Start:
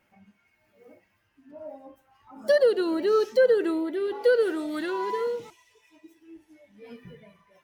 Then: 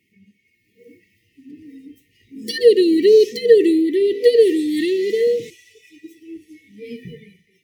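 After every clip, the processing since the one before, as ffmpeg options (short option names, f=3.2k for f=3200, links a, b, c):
-af "highpass=77,afftfilt=real='re*(1-between(b*sr/4096,490,1800))':imag='im*(1-between(b*sr/4096,490,1800))':win_size=4096:overlap=0.75,dynaudnorm=f=710:g=3:m=8.5dB,volume=3.5dB"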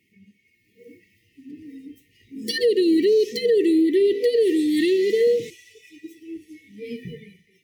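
-af "alimiter=limit=-12dB:level=0:latency=1:release=137"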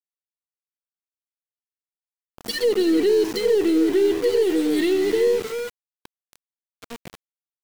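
-filter_complex "[0:a]asplit=2[a][b];[b]adelay=314.9,volume=-9dB,highshelf=f=4k:g=-7.08[c];[a][c]amix=inputs=2:normalize=0,aeval=exprs='val(0)*gte(abs(val(0)),0.0398)':c=same,aeval=exprs='0.335*(cos(1*acos(clip(val(0)/0.335,-1,1)))-cos(1*PI/2))+0.0106*(cos(6*acos(clip(val(0)/0.335,-1,1)))-cos(6*PI/2))':c=same,volume=-1dB"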